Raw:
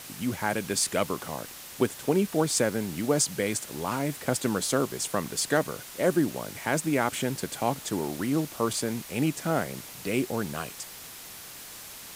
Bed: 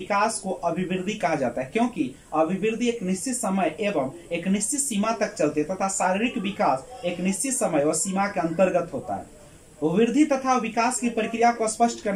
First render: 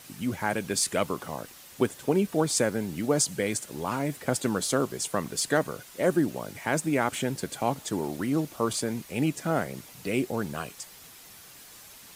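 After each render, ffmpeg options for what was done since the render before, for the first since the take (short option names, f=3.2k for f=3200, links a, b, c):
-af "afftdn=nr=7:nf=-44"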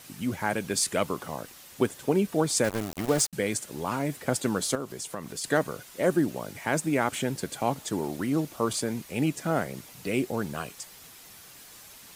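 -filter_complex "[0:a]asettb=1/sr,asplit=3[a][b][c];[a]atrim=end=2.644[d];[b]atrim=start=2.64:end=3.33,asetpts=PTS-STARTPTS,afade=t=in:d=0.004:c=qsin,afade=t=out:st=0.686:d=0.004:c=qsin,aeval=exprs='val(0)*gte(abs(val(0)),0.0335)':c=same[e];[c]atrim=start=3.326[f];[d][e]acrossfade=d=0.004:c1=hsin:c2=qsin[g];[g][f]acrossfade=d=0.004:c1=qsin:c2=hsin,asettb=1/sr,asplit=3[h][i][j];[h]atrim=end=4.754[k];[i]atrim=start=4.75:end=5.44,asetpts=PTS-STARTPTS,afade=t=in:d=0.004:c=qsin,afade=t=out:st=0.686:d=0.004:c=qsin,acompressor=threshold=-36dB:ratio=2:attack=3.2:release=140:knee=1:detection=peak[l];[j]atrim=start=5.436[m];[k][l]acrossfade=d=0.004:c1=hsin:c2=qsin[n];[n][m]acrossfade=d=0.004:c1=qsin:c2=hsin"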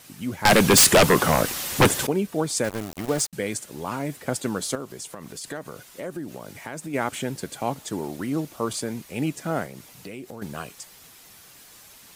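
-filter_complex "[0:a]asettb=1/sr,asplit=3[a][b][c];[a]atrim=end=0.454[d];[b]atrim=start=0.45:end=2.07,asetpts=PTS-STARTPTS,afade=t=in:d=0.004:c=qsin,afade=t=out:st=1.616:d=0.004:c=qsin,aeval=exprs='0.316*sin(PI/2*5.62*val(0)/0.316)':c=same[e];[c]atrim=start=2.066[f];[d][e]acrossfade=d=0.004:c1=hsin:c2=qsin[g];[g][f]acrossfade=d=0.004:c1=qsin:c2=hsin,asplit=3[h][i][j];[h]afade=t=out:st=5.12:d=0.02[k];[i]acompressor=threshold=-32dB:ratio=3:attack=3.2:release=140:knee=1:detection=peak,afade=t=in:st=5.12:d=0.02,afade=t=out:st=6.93:d=0.02[l];[j]afade=t=in:st=6.93:d=0.02[m];[k][l][m]amix=inputs=3:normalize=0,asettb=1/sr,asplit=3[n][o][p];[n]atrim=end=9.664[q];[o]atrim=start=9.66:end=10.42,asetpts=PTS-STARTPTS,afade=t=in:d=0.004:c=qsin,afade=t=out:st=0.756:d=0.004:c=qsin,acompressor=threshold=-35dB:ratio=4:attack=3.2:release=140:knee=1:detection=peak[r];[p]atrim=start=10.416[s];[q][r]acrossfade=d=0.004:c1=hsin:c2=qsin[t];[t][s]acrossfade=d=0.004:c1=qsin:c2=hsin"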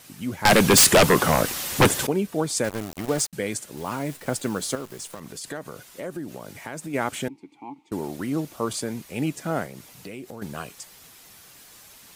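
-filter_complex "[0:a]asettb=1/sr,asplit=3[a][b][c];[a]atrim=end=3.774[d];[b]atrim=start=3.77:end=5.2,asetpts=PTS-STARTPTS,afade=t=in:d=0.004:c=qsin,afade=t=out:st=1.426:d=0.004:c=qsin,acrusher=bits=8:dc=4:mix=0:aa=0.000001[e];[c]atrim=start=5.196[f];[d][e]acrossfade=d=0.004:c1=hsin:c2=qsin[g];[g][f]acrossfade=d=0.004:c1=qsin:c2=hsin,asettb=1/sr,asplit=3[h][i][j];[h]atrim=end=7.284[k];[i]atrim=start=7.28:end=7.92,asetpts=PTS-STARTPTS,afade=t=in:d=0.004:c=qsin,afade=t=out:st=0.636:d=0.004:c=qsin,asplit=3[l][m][n];[l]bandpass=f=300:t=q:w=8,volume=0dB[o];[m]bandpass=f=870:t=q:w=8,volume=-6dB[p];[n]bandpass=f=2.24k:t=q:w=8,volume=-9dB[q];[o][p][q]amix=inputs=3:normalize=0[r];[j]atrim=start=7.916[s];[k][r]acrossfade=d=0.004:c1=hsin:c2=qsin[t];[t][s]acrossfade=d=0.004:c1=qsin:c2=hsin"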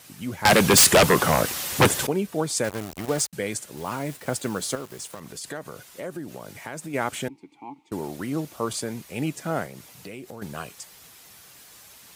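-af "highpass=44,equalizer=f=260:w=1.5:g=-2.5"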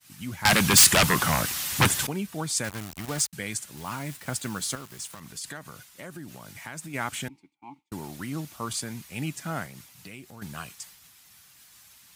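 -af "equalizer=f=470:w=1:g=-12.5,agate=range=-33dB:threshold=-44dB:ratio=3:detection=peak"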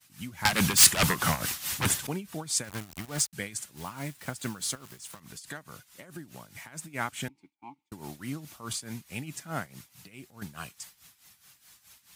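-af "tremolo=f=4.7:d=0.78"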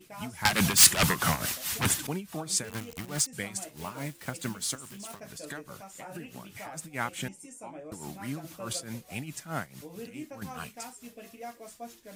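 -filter_complex "[1:a]volume=-22.5dB[a];[0:a][a]amix=inputs=2:normalize=0"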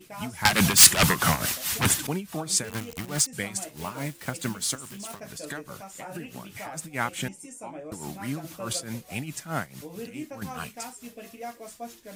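-af "volume=4dB"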